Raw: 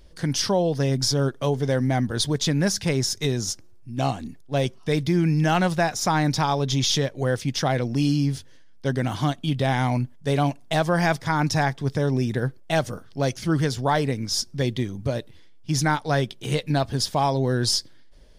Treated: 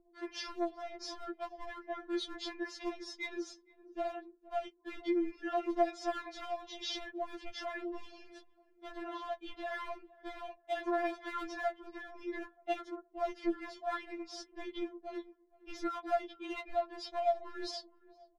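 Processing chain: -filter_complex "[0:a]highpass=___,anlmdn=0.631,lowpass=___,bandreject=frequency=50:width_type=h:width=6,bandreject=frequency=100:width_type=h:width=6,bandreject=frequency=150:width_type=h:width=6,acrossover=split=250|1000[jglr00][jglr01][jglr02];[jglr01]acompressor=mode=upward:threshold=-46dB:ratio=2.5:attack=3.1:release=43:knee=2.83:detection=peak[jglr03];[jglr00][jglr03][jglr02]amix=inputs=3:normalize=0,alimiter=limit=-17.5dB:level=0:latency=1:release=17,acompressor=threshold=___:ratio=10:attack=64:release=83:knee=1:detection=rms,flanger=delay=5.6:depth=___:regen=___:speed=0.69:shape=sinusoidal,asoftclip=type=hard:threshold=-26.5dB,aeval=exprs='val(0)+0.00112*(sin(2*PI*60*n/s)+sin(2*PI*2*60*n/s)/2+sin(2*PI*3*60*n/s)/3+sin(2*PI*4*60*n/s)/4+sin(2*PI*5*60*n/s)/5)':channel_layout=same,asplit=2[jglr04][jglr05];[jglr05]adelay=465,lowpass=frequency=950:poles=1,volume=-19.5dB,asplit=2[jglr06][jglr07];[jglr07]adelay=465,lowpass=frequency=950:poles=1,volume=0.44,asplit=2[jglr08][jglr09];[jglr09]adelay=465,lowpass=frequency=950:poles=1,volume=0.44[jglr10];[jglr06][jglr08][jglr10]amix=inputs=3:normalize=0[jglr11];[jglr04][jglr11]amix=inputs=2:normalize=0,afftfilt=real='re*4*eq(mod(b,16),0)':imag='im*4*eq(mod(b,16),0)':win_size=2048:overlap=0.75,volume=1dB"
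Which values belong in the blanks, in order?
63, 2200, -28dB, 8, 39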